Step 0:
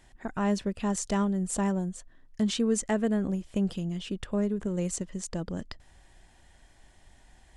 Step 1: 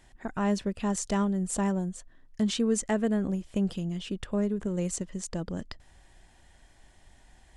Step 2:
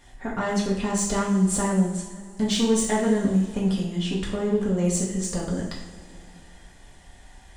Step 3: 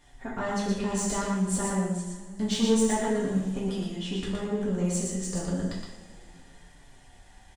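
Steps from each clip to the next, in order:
no processing that can be heard
soft clipping −23 dBFS, distortion −15 dB; coupled-rooms reverb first 0.55 s, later 3 s, from −18 dB, DRR −4.5 dB; level +3 dB
flanger 0.3 Hz, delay 6.6 ms, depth 6.4 ms, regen +48%; on a send: single-tap delay 118 ms −3.5 dB; on the sum: level −1.5 dB

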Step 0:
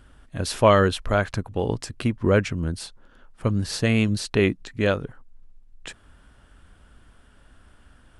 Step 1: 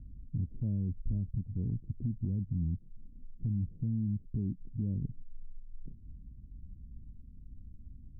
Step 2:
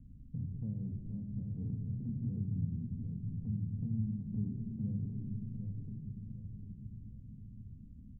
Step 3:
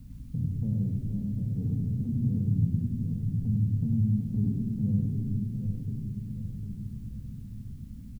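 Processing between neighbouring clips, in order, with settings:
inverse Chebyshev low-pass filter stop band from 1,300 Hz, stop band 80 dB; downward compressor 1.5 to 1, threshold −40 dBFS, peak gain reduction 8 dB; brickwall limiter −30.5 dBFS, peak gain reduction 8.5 dB; level +5 dB
downward compressor, threshold −35 dBFS, peak gain reduction 7.5 dB; repeating echo 752 ms, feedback 39%, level −7 dB; convolution reverb RT60 3.6 s, pre-delay 3 ms, DRR 4 dB; level −7.5 dB
background noise white −79 dBFS; single-tap delay 101 ms −4 dB; level +8 dB

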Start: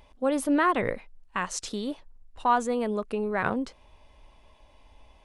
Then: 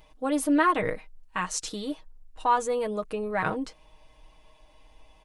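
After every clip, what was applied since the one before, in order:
high-shelf EQ 6,200 Hz +5 dB
comb filter 6.4 ms, depth 68%
level −2 dB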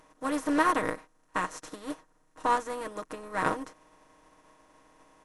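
compressor on every frequency bin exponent 0.4
expander for the loud parts 2.5 to 1, over −34 dBFS
level −3 dB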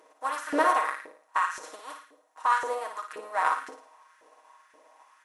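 flutter between parallel walls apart 9.6 metres, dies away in 0.53 s
auto-filter high-pass saw up 1.9 Hz 410–1,700 Hz
level −1.5 dB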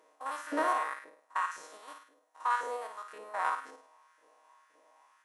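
spectrum averaged block by block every 50 ms
level −5 dB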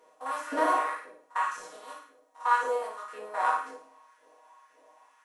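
rectangular room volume 140 cubic metres, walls furnished, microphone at 1.8 metres

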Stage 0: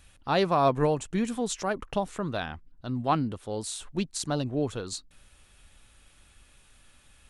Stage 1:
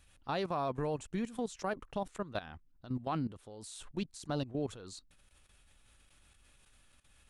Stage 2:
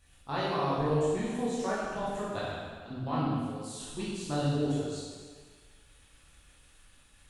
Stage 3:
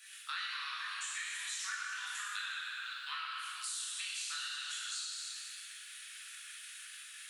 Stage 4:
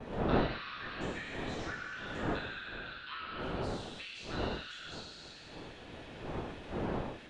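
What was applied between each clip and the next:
output level in coarse steps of 15 dB; level −3.5 dB
convolution reverb RT60 1.6 s, pre-delay 13 ms, DRR −9 dB; level −3.5 dB
Butterworth high-pass 1,400 Hz 48 dB per octave; downward compressor, threshold −52 dBFS, peak gain reduction 14.5 dB; feedback echo with a swinging delay time 119 ms, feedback 68%, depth 110 cents, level −12 dB; level +13.5 dB
wind on the microphone 580 Hz −39 dBFS; noise gate with hold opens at −37 dBFS; high-frequency loss of the air 210 metres

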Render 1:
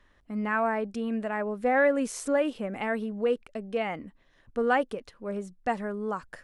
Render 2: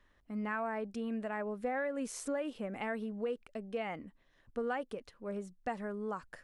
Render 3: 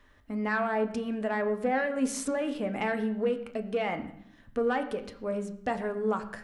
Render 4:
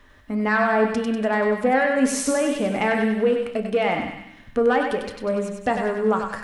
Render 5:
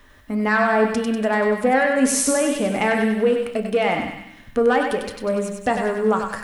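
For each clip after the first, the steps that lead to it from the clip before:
downward compressor 6 to 1, threshold −26 dBFS, peak gain reduction 8.5 dB; level −6 dB
soft clipping −27 dBFS, distortion −23 dB; convolution reverb RT60 0.75 s, pre-delay 5 ms, DRR 6 dB; level +8 dB
feedback echo with a high-pass in the loop 97 ms, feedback 57%, high-pass 820 Hz, level −4 dB; level +8 dB
high-shelf EQ 8,700 Hz +11.5 dB; level +1.5 dB

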